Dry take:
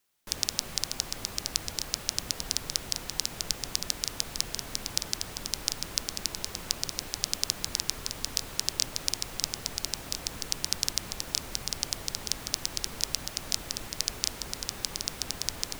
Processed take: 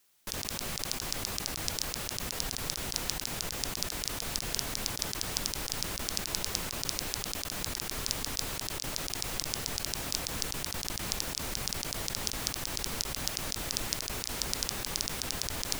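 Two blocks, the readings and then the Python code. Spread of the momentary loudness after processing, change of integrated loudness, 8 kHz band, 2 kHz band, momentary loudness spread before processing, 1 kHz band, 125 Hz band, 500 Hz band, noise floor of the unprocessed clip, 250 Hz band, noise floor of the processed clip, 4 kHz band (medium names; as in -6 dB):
2 LU, -2.0 dB, -2.5 dB, +2.0 dB, 4 LU, +3.0 dB, +3.0 dB, +3.0 dB, -43 dBFS, +3.0 dB, -40 dBFS, -3.0 dB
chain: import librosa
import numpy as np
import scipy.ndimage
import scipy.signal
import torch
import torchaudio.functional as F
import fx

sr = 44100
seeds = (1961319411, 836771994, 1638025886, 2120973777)

y = fx.high_shelf(x, sr, hz=2600.0, db=4.0)
y = fx.over_compress(y, sr, threshold_db=-33.0, ratio=-1.0)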